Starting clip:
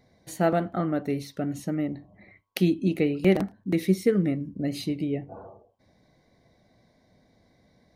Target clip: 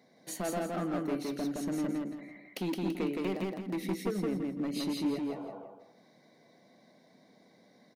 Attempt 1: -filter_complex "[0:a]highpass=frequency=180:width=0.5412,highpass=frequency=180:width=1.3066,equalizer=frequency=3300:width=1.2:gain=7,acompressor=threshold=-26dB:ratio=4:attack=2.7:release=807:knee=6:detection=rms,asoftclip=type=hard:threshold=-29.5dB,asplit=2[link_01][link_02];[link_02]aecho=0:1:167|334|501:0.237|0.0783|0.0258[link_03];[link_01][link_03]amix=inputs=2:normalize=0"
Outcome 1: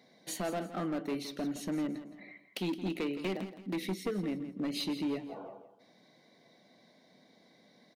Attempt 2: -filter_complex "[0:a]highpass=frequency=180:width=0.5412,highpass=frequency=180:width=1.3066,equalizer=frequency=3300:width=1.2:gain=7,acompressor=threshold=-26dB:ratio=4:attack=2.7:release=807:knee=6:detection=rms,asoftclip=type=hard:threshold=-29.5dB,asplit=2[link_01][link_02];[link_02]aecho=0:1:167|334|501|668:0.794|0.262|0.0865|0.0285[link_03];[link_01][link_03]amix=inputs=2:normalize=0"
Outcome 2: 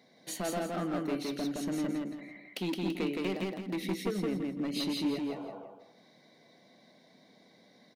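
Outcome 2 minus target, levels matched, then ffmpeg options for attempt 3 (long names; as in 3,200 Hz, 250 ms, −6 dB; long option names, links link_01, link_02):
4,000 Hz band +4.5 dB
-filter_complex "[0:a]highpass=frequency=180:width=0.5412,highpass=frequency=180:width=1.3066,acompressor=threshold=-26dB:ratio=4:attack=2.7:release=807:knee=6:detection=rms,asoftclip=type=hard:threshold=-29.5dB,asplit=2[link_01][link_02];[link_02]aecho=0:1:167|334|501|668:0.794|0.262|0.0865|0.0285[link_03];[link_01][link_03]amix=inputs=2:normalize=0"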